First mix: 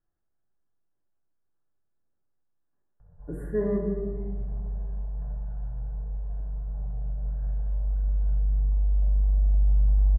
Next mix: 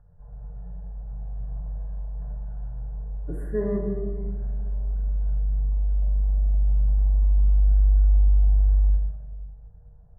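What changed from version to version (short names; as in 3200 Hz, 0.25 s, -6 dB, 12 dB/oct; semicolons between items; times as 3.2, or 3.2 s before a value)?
background: entry -3.00 s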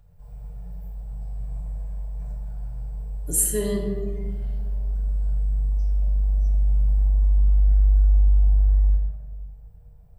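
master: remove elliptic low-pass 1700 Hz, stop band 40 dB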